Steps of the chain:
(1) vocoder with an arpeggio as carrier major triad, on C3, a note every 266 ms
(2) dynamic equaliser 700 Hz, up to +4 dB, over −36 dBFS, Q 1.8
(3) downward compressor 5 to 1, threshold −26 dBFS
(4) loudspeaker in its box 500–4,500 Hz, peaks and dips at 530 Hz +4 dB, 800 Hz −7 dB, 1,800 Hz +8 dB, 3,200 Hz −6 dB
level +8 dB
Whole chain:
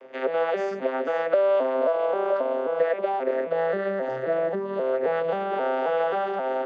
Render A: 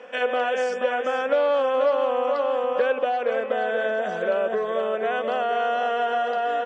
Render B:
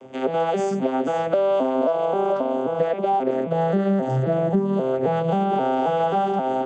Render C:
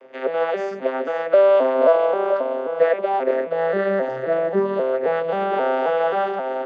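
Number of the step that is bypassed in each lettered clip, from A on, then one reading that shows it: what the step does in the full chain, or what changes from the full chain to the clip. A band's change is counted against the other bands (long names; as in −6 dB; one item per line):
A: 1, 250 Hz band −6.0 dB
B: 4, 125 Hz band +15.5 dB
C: 3, average gain reduction 3.5 dB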